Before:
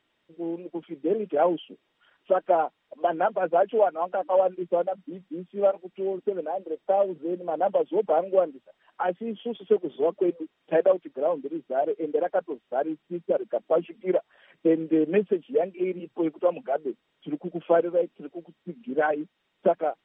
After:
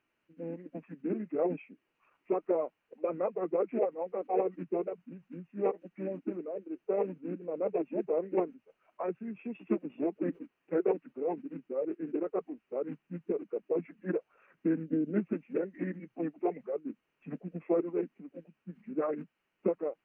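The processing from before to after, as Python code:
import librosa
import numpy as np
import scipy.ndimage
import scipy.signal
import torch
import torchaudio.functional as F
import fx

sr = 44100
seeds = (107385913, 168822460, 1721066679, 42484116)

y = fx.formant_shift(x, sr, semitones=-4)
y = fx.spec_box(y, sr, start_s=14.85, length_s=0.32, low_hz=670.0, high_hz=2700.0, gain_db=-10)
y = y * librosa.db_to_amplitude(-7.5)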